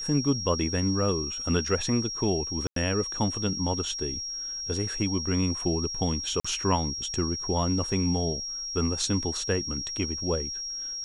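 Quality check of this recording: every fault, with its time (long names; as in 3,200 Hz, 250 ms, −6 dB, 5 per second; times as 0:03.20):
whistle 5,600 Hz −32 dBFS
0:02.67–0:02.76: drop-out 93 ms
0:06.40–0:06.45: drop-out 45 ms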